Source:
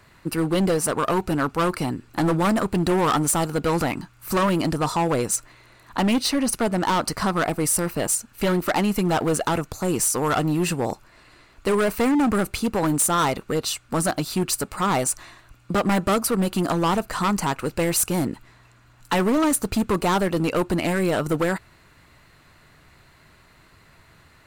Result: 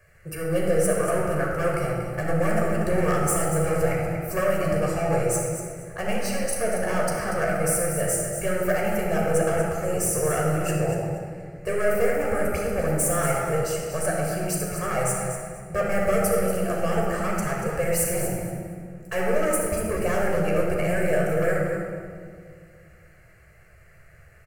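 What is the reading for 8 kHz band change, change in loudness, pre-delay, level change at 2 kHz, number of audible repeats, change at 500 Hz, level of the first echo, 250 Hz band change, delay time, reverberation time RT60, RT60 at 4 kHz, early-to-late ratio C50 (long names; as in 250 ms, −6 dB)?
−3.0 dB, −2.0 dB, 13 ms, 0.0 dB, 1, +2.0 dB, −8.5 dB, −6.5 dB, 237 ms, 2.0 s, 1.2 s, −0.5 dB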